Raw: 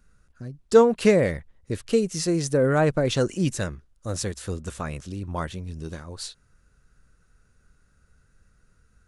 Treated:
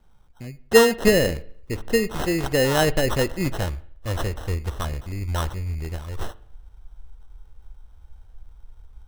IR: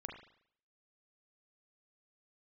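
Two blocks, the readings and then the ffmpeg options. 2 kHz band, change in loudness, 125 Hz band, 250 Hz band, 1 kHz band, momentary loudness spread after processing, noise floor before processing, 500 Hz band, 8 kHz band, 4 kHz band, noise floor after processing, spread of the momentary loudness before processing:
+6.5 dB, +1.0 dB, +1.5 dB, -0.5 dB, +2.0 dB, 18 LU, -64 dBFS, +0.5 dB, +2.5 dB, +6.0 dB, -51 dBFS, 19 LU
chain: -filter_complex "[0:a]acrusher=samples=19:mix=1:aa=0.000001,asubboost=boost=9.5:cutoff=56,asplit=2[a][b];[1:a]atrim=start_sample=2205[c];[b][c]afir=irnorm=-1:irlink=0,volume=-9.5dB[d];[a][d]amix=inputs=2:normalize=0"

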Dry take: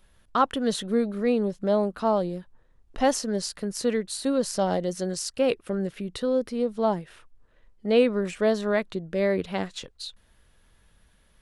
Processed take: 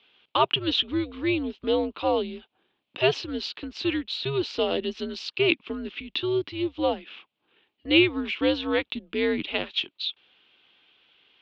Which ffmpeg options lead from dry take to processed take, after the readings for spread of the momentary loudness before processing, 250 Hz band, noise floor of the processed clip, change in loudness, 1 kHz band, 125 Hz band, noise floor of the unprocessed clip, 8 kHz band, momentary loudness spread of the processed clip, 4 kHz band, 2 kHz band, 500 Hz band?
8 LU, -1.0 dB, -79 dBFS, 0.0 dB, -2.5 dB, -2.5 dB, -61 dBFS, under -15 dB, 10 LU, +9.5 dB, +6.5 dB, -2.5 dB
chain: -af "highpass=f=340:t=q:w=0.5412,highpass=f=340:t=q:w=1.307,lowpass=f=3.3k:t=q:w=0.5176,lowpass=f=3.3k:t=q:w=0.7071,lowpass=f=3.3k:t=q:w=1.932,afreqshift=-140,aexciter=amount=10.9:drive=1.8:freq=2.5k"

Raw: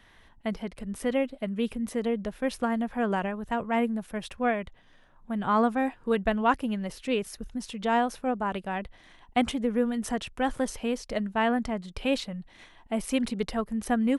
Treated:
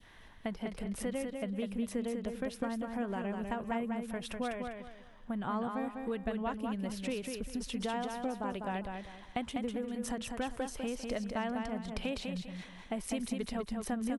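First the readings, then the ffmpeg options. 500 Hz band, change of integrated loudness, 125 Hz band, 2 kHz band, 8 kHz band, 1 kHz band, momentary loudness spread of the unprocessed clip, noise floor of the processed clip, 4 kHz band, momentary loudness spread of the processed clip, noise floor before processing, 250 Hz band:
-8.5 dB, -8.5 dB, -5.0 dB, -9.5 dB, -4.0 dB, -10.0 dB, 9 LU, -54 dBFS, -6.5 dB, 5 LU, -57 dBFS, -7.5 dB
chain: -filter_complex "[0:a]adynamicequalizer=threshold=0.00891:dfrequency=1400:dqfactor=0.74:tfrequency=1400:tqfactor=0.74:attack=5:release=100:ratio=0.375:range=4:mode=cutabove:tftype=bell,acompressor=threshold=-34dB:ratio=6,asplit=2[a][b];[b]aecho=0:1:199|398|597|796:0.562|0.169|0.0506|0.0152[c];[a][c]amix=inputs=2:normalize=0"

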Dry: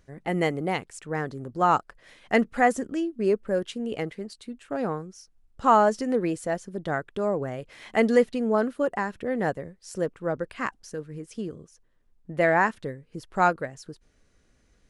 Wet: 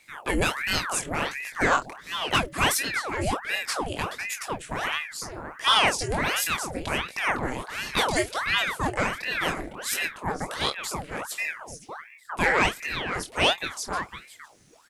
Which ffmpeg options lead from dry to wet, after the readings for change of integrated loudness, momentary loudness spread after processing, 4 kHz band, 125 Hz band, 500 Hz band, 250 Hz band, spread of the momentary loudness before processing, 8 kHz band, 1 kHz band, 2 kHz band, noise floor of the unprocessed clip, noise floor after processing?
0.0 dB, 10 LU, +17.0 dB, 0.0 dB, -6.0 dB, -6.0 dB, 16 LU, +13.5 dB, -1.5 dB, +6.0 dB, -64 dBFS, -51 dBFS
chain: -filter_complex "[0:a]bandreject=f=146:t=h:w=4,bandreject=f=292:t=h:w=4,bandreject=f=438:t=h:w=4,acrossover=split=200|840[a][b][c];[b]acompressor=threshold=-33dB:ratio=6[d];[a][d][c]amix=inputs=3:normalize=0,crystalizer=i=3.5:c=0,flanger=delay=18.5:depth=7.7:speed=0.7,asoftclip=type=tanh:threshold=-18dB,asplit=2[e][f];[f]adelay=29,volume=-12.5dB[g];[e][g]amix=inputs=2:normalize=0,asplit=2[h][i];[i]adelay=507.3,volume=-8dB,highshelf=f=4k:g=-11.4[j];[h][j]amix=inputs=2:normalize=0,aeval=exprs='val(0)*sin(2*PI*1200*n/s+1200*0.9/1.4*sin(2*PI*1.4*n/s))':c=same,volume=8dB"

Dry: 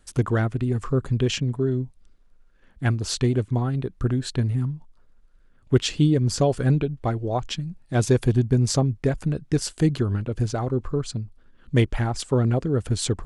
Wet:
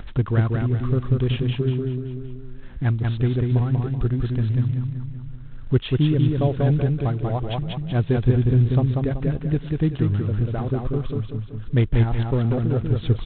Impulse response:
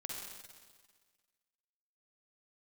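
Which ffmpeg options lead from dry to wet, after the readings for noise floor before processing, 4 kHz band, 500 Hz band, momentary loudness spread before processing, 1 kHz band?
-56 dBFS, -6.0 dB, -1.5 dB, 7 LU, -2.0 dB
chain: -af "lowshelf=f=140:g=10.5,aecho=1:1:190|380|570|760|950:0.708|0.248|0.0867|0.0304|0.0106,acompressor=mode=upward:threshold=-16dB:ratio=2.5,volume=-4.5dB" -ar 8000 -c:a adpcm_g726 -b:a 24k

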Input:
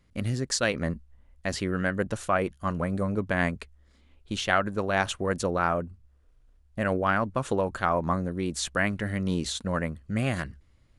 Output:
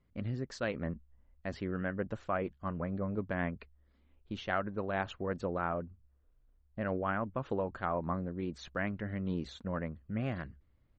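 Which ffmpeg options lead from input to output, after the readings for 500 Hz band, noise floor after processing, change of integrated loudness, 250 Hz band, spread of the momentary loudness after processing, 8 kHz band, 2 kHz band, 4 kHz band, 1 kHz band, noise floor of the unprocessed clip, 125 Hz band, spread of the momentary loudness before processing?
-8.0 dB, -69 dBFS, -8.5 dB, -7.0 dB, 7 LU, under -20 dB, -11.0 dB, -15.5 dB, -9.0 dB, -61 dBFS, -7.5 dB, 7 LU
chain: -af "firequalizer=gain_entry='entry(110,0);entry(220,1);entry(7400,-18)':delay=0.05:min_phase=1,volume=-7.5dB" -ar 48000 -c:a libmp3lame -b:a 32k

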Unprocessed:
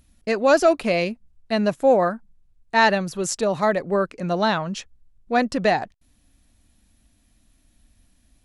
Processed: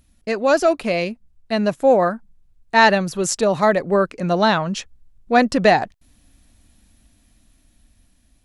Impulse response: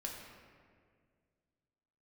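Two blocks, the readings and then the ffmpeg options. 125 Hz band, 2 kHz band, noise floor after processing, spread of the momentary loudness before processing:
+3.5 dB, +3.5 dB, -60 dBFS, 10 LU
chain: -af "dynaudnorm=f=560:g=7:m=11.5dB"

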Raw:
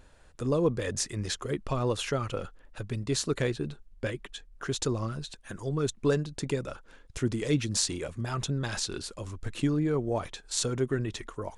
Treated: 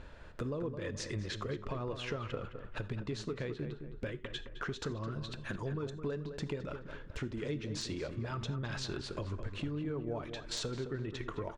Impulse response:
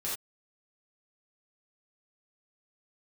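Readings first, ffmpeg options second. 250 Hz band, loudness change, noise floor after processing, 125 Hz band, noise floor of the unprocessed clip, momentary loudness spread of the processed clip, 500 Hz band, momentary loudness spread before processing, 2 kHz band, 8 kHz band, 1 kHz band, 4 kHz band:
-8.5 dB, -8.5 dB, -50 dBFS, -7.0 dB, -56 dBFS, 5 LU, -8.5 dB, 12 LU, -5.0 dB, -15.5 dB, -7.0 dB, -7.5 dB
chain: -filter_complex "[0:a]lowpass=3.6k,bandreject=f=780:w=12,acompressor=threshold=-42dB:ratio=8,asoftclip=type=hard:threshold=-35dB,asplit=2[a][b];[b]adelay=213,lowpass=f=1.8k:p=1,volume=-8dB,asplit=2[c][d];[d]adelay=213,lowpass=f=1.8k:p=1,volume=0.43,asplit=2[e][f];[f]adelay=213,lowpass=f=1.8k:p=1,volume=0.43,asplit=2[g][h];[h]adelay=213,lowpass=f=1.8k:p=1,volume=0.43,asplit=2[i][j];[j]adelay=213,lowpass=f=1.8k:p=1,volume=0.43[k];[a][c][e][g][i][k]amix=inputs=6:normalize=0,asplit=2[l][m];[1:a]atrim=start_sample=2205[n];[m][n]afir=irnorm=-1:irlink=0,volume=-17.5dB[o];[l][o]amix=inputs=2:normalize=0,volume=5.5dB"

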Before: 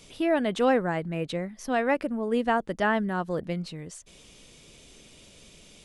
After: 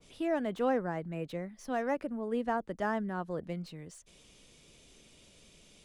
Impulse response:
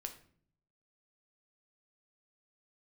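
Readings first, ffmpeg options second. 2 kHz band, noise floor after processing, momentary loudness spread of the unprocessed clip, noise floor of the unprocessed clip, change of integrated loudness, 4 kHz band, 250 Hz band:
-10.0 dB, -61 dBFS, 11 LU, -53 dBFS, -7.5 dB, -12.0 dB, -7.0 dB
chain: -filter_complex "[0:a]acrossover=split=270|1100|1500[a][b][c][d];[d]asoftclip=type=tanh:threshold=-38.5dB[e];[a][b][c][e]amix=inputs=4:normalize=0,adynamicequalizer=threshold=0.00891:dfrequency=2100:dqfactor=0.7:tfrequency=2100:tqfactor=0.7:attack=5:release=100:ratio=0.375:range=2.5:mode=cutabove:tftype=highshelf,volume=-7dB"

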